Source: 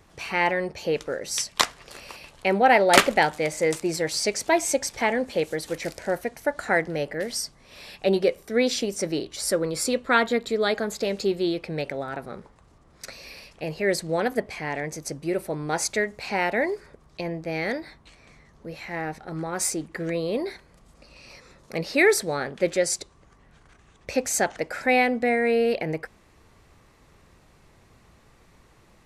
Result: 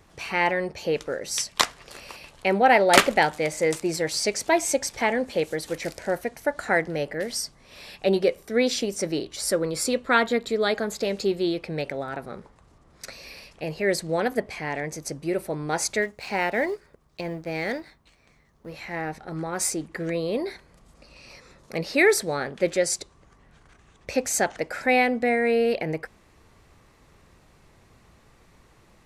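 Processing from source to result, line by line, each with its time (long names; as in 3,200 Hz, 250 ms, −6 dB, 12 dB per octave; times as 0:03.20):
0:16.02–0:18.74: mu-law and A-law mismatch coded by A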